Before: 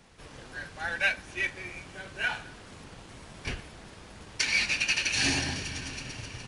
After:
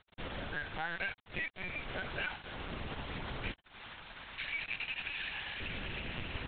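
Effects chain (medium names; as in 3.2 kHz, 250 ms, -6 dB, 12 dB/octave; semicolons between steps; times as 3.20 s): 3.52–5.61 s: high-pass 1.1 kHz 12 dB/octave; compression 8:1, threshold -44 dBFS, peak gain reduction 21.5 dB; bit crusher 8-bit; LPC vocoder at 8 kHz pitch kept; trim +8 dB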